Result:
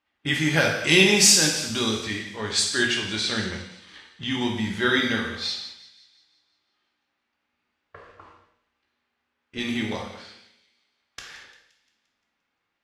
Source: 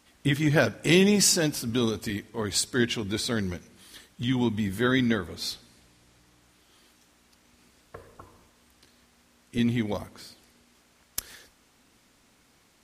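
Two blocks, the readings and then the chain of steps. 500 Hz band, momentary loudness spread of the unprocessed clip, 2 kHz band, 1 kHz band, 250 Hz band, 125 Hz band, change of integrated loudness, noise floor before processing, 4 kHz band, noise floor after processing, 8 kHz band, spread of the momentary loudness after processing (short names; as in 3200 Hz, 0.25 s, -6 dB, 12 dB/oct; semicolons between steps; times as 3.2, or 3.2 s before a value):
+0.5 dB, 16 LU, +7.0 dB, +4.0 dB, -1.5 dB, -2.5 dB, +4.5 dB, -63 dBFS, +7.5 dB, -79 dBFS, +6.0 dB, 19 LU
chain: gate -53 dBFS, range -18 dB; low-pass opened by the level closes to 2400 Hz, open at -19 dBFS; high shelf 12000 Hz -12 dB; de-hum 59.78 Hz, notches 3; harmonic-percussive split harmonic +5 dB; tilt shelf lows -7 dB, about 760 Hz; split-band echo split 2200 Hz, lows 81 ms, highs 0.174 s, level -15.5 dB; non-linear reverb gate 0.26 s falling, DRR 0 dB; gain -2.5 dB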